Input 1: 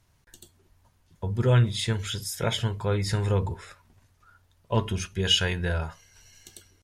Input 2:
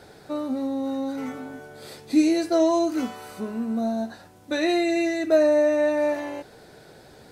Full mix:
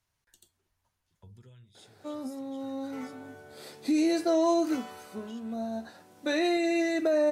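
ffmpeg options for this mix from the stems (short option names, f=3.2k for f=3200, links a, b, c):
-filter_complex "[0:a]alimiter=limit=-21dB:level=0:latency=1:release=360,lowshelf=f=500:g=-9,acrossover=split=310|3000[a][b][c];[b]acompressor=threshold=-56dB:ratio=3[d];[a][d][c]amix=inputs=3:normalize=0,volume=-10dB,afade=t=out:st=1.08:d=0.69:silence=0.281838,asplit=2[e][f];[1:a]highpass=170,alimiter=limit=-16.5dB:level=0:latency=1:release=33,adelay=1750,volume=-1.5dB[g];[f]apad=whole_len=399929[h];[g][h]sidechaincompress=threshold=-59dB:ratio=8:attack=11:release=1400[i];[e][i]amix=inputs=2:normalize=0"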